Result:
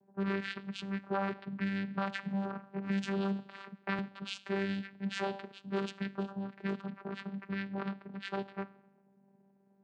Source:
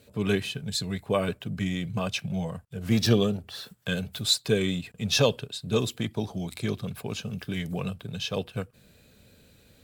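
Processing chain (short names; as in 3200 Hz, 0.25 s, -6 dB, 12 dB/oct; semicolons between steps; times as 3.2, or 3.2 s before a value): low shelf 380 Hz -6.5 dB; de-hum 278.6 Hz, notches 14; limiter -21.5 dBFS, peak gain reduction 10.5 dB; low-pass opened by the level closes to 450 Hz, open at -27 dBFS; plate-style reverb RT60 0.89 s, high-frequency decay 0.9×, DRR 18 dB; vocoder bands 8, saw 196 Hz; bell 1500 Hz +12.5 dB 1.8 oct; 1.6–3.99 three-band squash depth 70%; gain -2.5 dB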